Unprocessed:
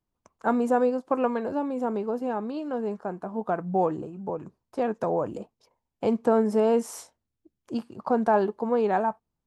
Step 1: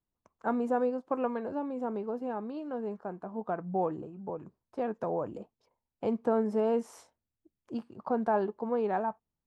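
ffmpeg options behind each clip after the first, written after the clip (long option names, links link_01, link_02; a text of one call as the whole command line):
ffmpeg -i in.wav -af "highshelf=frequency=5100:gain=-12,volume=-6dB" out.wav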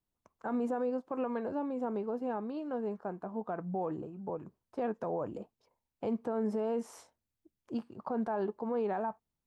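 ffmpeg -i in.wav -af "alimiter=level_in=1.5dB:limit=-24dB:level=0:latency=1:release=47,volume=-1.5dB" out.wav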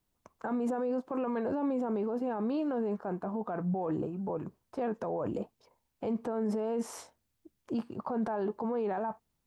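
ffmpeg -i in.wav -af "alimiter=level_in=9.5dB:limit=-24dB:level=0:latency=1:release=12,volume=-9.5dB,volume=8dB" out.wav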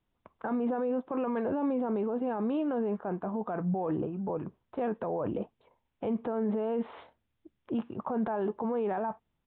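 ffmpeg -i in.wav -af "aresample=8000,aresample=44100,volume=1.5dB" out.wav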